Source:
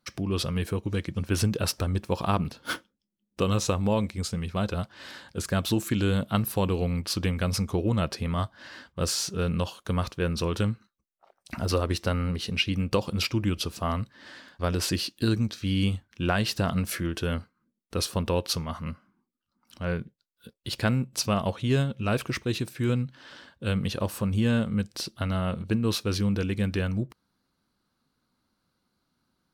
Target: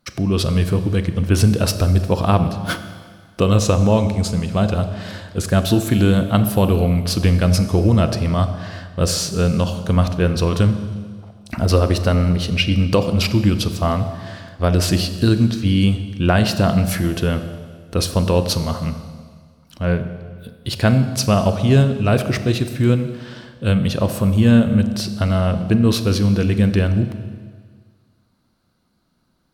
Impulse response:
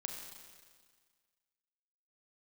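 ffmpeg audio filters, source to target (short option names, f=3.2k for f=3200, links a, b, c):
-filter_complex "[0:a]asplit=2[a][b];[b]equalizer=f=660:t=o:w=0.39:g=9[c];[1:a]atrim=start_sample=2205,lowshelf=f=330:g=10.5[d];[c][d]afir=irnorm=-1:irlink=0,volume=-2dB[e];[a][e]amix=inputs=2:normalize=0,volume=2.5dB"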